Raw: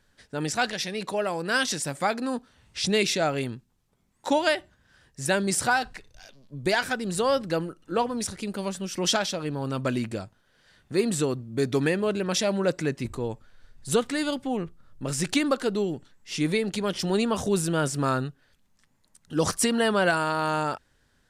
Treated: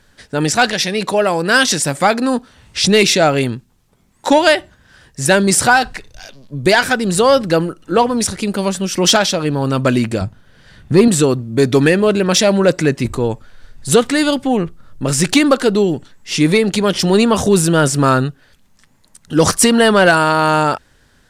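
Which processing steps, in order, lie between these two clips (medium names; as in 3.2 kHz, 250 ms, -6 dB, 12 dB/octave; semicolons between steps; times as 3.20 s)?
10.21–11.08 s: tone controls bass +10 dB, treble -3 dB; in parallel at -3.5 dB: sine folder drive 5 dB, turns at -8.5 dBFS; on the sum: trim +4 dB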